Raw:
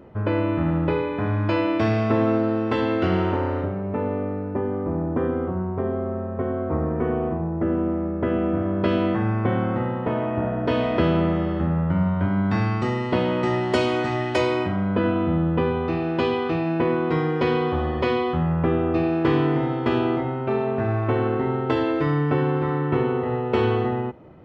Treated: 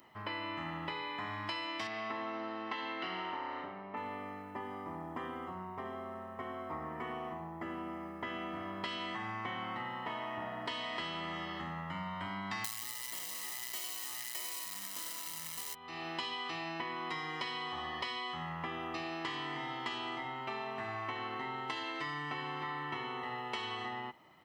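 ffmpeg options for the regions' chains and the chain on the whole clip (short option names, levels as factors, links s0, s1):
-filter_complex "[0:a]asettb=1/sr,asplit=3[s0][s1][s2];[s0]atrim=end=1.874[s3];[s1]atrim=start=1.87:end=3.97,asetpts=PTS-STARTPTS,afade=t=in:d=0.004:c=qsin,afade=t=out:st=2.096:d=0.004:c=qsin,highpass=190,lowpass=5500,aemphasis=mode=reproduction:type=75fm[s4];[s2]atrim=start=3.966[s5];[s3][s4]acrossfade=d=0.004:c1=hsin:c2=qsin[s6];[s6][s5]acrossfade=d=0.004:c1=qsin:c2=hsin,asettb=1/sr,asplit=3[s7][s8][s9];[s7]atrim=end=12.644[s10];[s8]atrim=start=12.64:end=15.75,asetpts=PTS-STARTPTS,afade=t=in:d=0.004:c=qsin,afade=t=out:st=3.106:d=0.004:c=qsin,aecho=1:1:99|198|297|396|495|594:0.631|0.303|0.145|0.0698|0.0335|0.0161,atrim=end_sample=137151,acrusher=bits=5:dc=4:mix=0:aa=0.000001[s11];[s9]atrim=start=15.746[s12];[s10][s11]acrossfade=d=0.004:c1=hsin:c2=qsin[s13];[s13][s12]acrossfade=d=0.004:c1=qsin:c2=hsin,aderivative,aecho=1:1:1:0.59,acompressor=threshold=0.00631:ratio=10,volume=2.66"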